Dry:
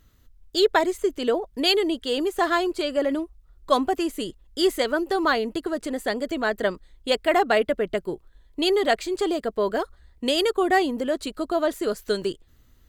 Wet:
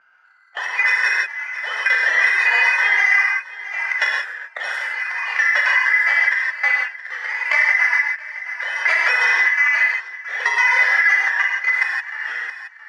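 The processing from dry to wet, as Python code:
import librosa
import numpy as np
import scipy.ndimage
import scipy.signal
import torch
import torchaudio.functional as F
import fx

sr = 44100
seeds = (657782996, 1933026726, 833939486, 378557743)

y = fx.band_shuffle(x, sr, order='3142')
y = fx.leveller(y, sr, passes=5)
y = scipy.signal.sosfilt(scipy.signal.butter(4, 610.0, 'highpass', fs=sr, output='sos'), y)
y = fx.pitch_keep_formants(y, sr, semitones=5.5)
y = scipy.signal.sosfilt(scipy.signal.butter(2, 1700.0, 'lowpass', fs=sr, output='sos'), y)
y = fx.auto_swell(y, sr, attack_ms=426.0)
y = fx.level_steps(y, sr, step_db=20)
y = y + 10.0 ** (-23.0 / 20.0) * np.pad(y, (int(671 * sr / 1000.0), 0))[:len(y)]
y = fx.rev_gated(y, sr, seeds[0], gate_ms=190, shape='flat', drr_db=-3.0)
y = fx.band_squash(y, sr, depth_pct=70)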